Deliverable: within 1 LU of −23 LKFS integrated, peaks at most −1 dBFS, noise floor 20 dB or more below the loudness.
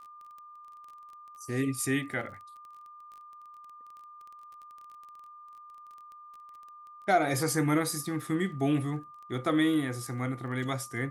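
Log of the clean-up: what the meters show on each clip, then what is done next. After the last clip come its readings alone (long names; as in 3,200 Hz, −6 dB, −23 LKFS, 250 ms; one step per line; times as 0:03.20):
crackle rate 19 per second; interfering tone 1,200 Hz; level of the tone −47 dBFS; integrated loudness −30.0 LKFS; sample peak −13.5 dBFS; target loudness −23.0 LKFS
→ click removal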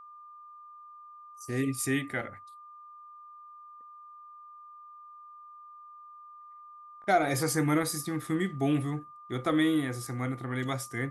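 crackle rate 0 per second; interfering tone 1,200 Hz; level of the tone −47 dBFS
→ notch filter 1,200 Hz, Q 30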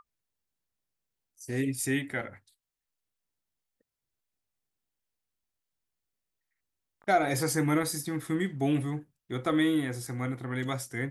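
interfering tone none found; integrated loudness −30.0 LKFS; sample peak −14.0 dBFS; target loudness −23.0 LKFS
→ level +7 dB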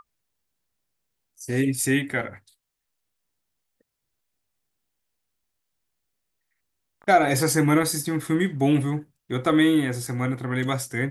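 integrated loudness −23.0 LKFS; sample peak −7.0 dBFS; background noise floor −80 dBFS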